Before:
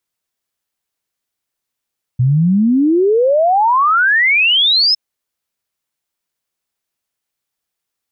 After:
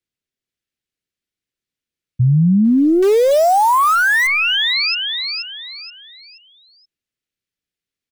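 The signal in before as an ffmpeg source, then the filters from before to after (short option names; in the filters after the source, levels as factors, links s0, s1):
-f lavfi -i "aevalsrc='0.355*clip(min(t,2.76-t)/0.01,0,1)*sin(2*PI*120*2.76/log(5300/120)*(exp(log(5300/120)*t/2.76)-1))':d=2.76:s=44100"
-filter_complex "[0:a]lowpass=f=2100:p=1,acrossover=split=280|500|1600[s0][s1][s2][s3];[s2]acrusher=bits=5:dc=4:mix=0:aa=0.000001[s4];[s3]aecho=1:1:477|954|1431|1908:0.596|0.203|0.0689|0.0234[s5];[s0][s1][s4][s5]amix=inputs=4:normalize=0"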